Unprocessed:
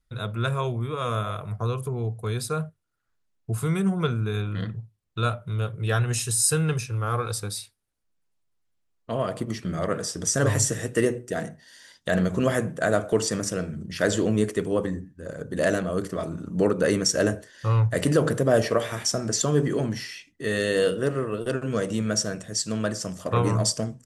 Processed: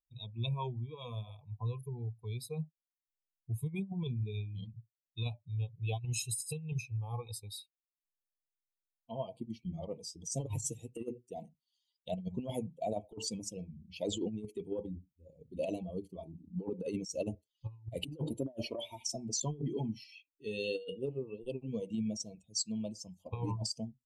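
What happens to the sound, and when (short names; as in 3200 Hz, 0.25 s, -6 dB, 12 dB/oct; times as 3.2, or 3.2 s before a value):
18.26–19.16 comb 3.2 ms, depth 42%
whole clip: per-bin expansion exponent 2; elliptic band-stop 940–2500 Hz, stop band 50 dB; negative-ratio compressor -31 dBFS, ratio -0.5; gain -4 dB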